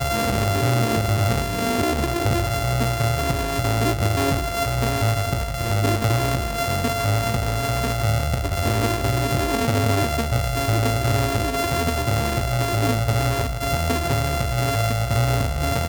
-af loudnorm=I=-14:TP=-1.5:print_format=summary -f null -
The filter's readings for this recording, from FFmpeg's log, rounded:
Input Integrated:    -21.8 LUFS
Input True Peak:     -10.1 dBTP
Input LRA:             0.6 LU
Input Threshold:     -31.8 LUFS